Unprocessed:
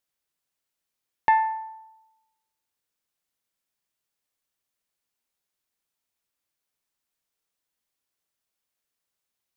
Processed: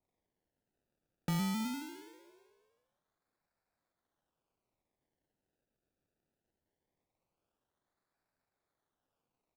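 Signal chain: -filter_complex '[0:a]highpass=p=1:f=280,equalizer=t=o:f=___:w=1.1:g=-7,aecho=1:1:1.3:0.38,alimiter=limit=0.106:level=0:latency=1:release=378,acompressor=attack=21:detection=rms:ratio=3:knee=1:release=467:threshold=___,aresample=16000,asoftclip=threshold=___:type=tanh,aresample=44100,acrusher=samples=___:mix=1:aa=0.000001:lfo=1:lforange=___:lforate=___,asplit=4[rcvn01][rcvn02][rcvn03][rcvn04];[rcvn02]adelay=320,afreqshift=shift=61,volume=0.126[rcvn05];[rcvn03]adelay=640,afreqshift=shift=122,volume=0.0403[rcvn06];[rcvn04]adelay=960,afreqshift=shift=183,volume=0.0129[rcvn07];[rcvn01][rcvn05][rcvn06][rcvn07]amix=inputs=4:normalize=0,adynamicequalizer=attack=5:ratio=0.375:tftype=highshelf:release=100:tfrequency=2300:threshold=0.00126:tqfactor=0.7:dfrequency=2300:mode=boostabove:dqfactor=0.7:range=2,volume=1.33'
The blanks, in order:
3200, 0.0224, 0.0316, 28, 28, 0.21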